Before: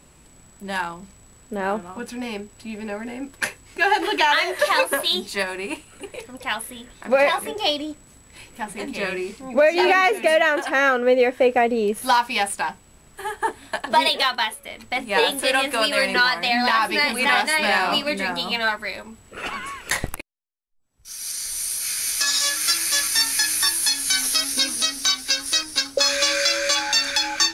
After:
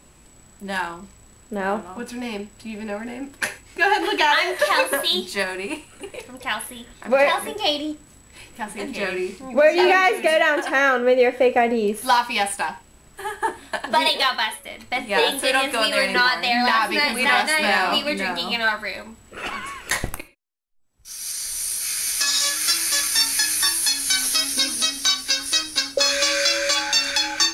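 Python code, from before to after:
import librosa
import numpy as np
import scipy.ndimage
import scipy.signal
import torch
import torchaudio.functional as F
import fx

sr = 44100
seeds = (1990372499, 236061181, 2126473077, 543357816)

y = fx.rev_gated(x, sr, seeds[0], gate_ms=150, shape='falling', drr_db=10.0)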